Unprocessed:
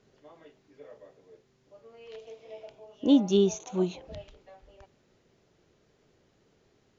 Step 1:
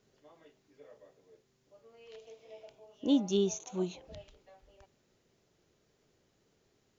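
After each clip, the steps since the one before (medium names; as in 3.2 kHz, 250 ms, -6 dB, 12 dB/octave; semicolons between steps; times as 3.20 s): treble shelf 6 kHz +10.5 dB; trim -6.5 dB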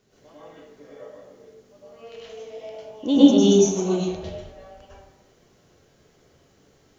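plate-style reverb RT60 0.93 s, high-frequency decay 0.55×, pre-delay 90 ms, DRR -8.5 dB; trim +5 dB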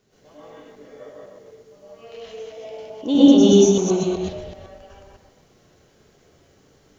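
chunks repeated in reverse 126 ms, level -1.5 dB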